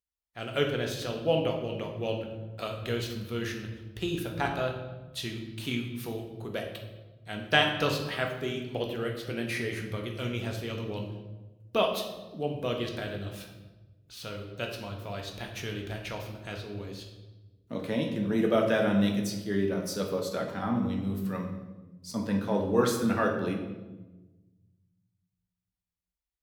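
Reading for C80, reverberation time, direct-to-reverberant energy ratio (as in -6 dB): 8.0 dB, 1.2 s, 1.5 dB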